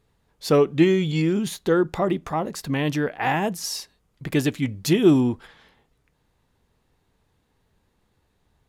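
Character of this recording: noise floor -69 dBFS; spectral tilt -5.5 dB/oct

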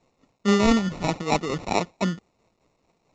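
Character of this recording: a quantiser's noise floor 12-bit, dither triangular; tremolo triangle 4.6 Hz, depth 55%; aliases and images of a low sample rate 1600 Hz, jitter 0%; µ-law

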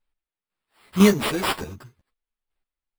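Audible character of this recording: chopped level 2 Hz, depth 65%, duty 25%; aliases and images of a low sample rate 6300 Hz, jitter 0%; a shimmering, thickened sound

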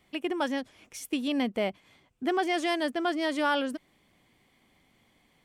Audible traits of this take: noise floor -67 dBFS; spectral tilt -1.5 dB/oct

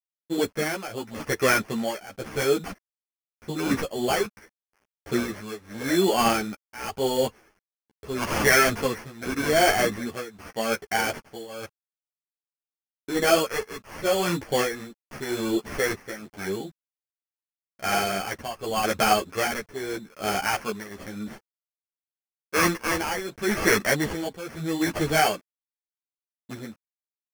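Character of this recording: aliases and images of a low sample rate 3800 Hz, jitter 0%; tremolo triangle 0.85 Hz, depth 90%; a quantiser's noise floor 10-bit, dither none; a shimmering, thickened sound

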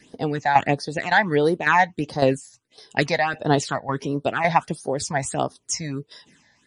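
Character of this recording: phasing stages 8, 1.5 Hz, lowest notch 360–2500 Hz; tremolo saw down 1.8 Hz, depth 65%; MP3

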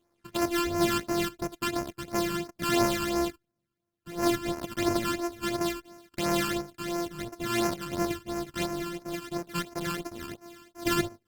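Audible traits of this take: a buzz of ramps at a fixed pitch in blocks of 128 samples; phasing stages 12, 2.9 Hz, lowest notch 630–3500 Hz; Opus

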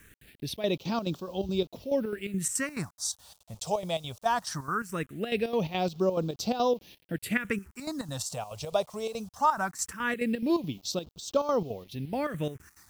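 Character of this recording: chopped level 4.7 Hz, depth 65%, duty 65%; a quantiser's noise floor 10-bit, dither none; phasing stages 4, 0.2 Hz, lowest notch 280–1900 Hz

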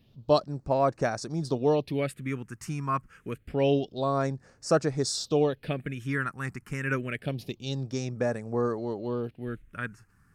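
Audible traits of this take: phasing stages 4, 0.27 Hz, lowest notch 570–3200 Hz

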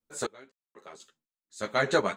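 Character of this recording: random-step tremolo 4 Hz, depth 100%; a shimmering, thickened sound

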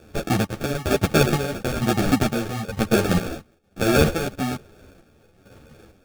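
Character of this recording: chopped level 1.1 Hz, depth 60%, duty 50%; aliases and images of a low sample rate 1000 Hz, jitter 0%; a shimmering, thickened sound

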